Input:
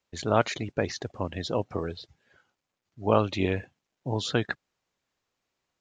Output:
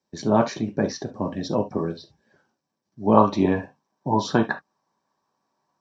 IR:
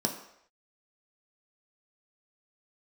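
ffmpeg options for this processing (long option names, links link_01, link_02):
-filter_complex "[0:a]asetnsamples=nb_out_samples=441:pad=0,asendcmd='3.17 equalizer g 14',equalizer=frequency=1000:width=1.4:gain=2.5[link_01];[1:a]atrim=start_sample=2205,atrim=end_sample=3528[link_02];[link_01][link_02]afir=irnorm=-1:irlink=0,volume=-7dB"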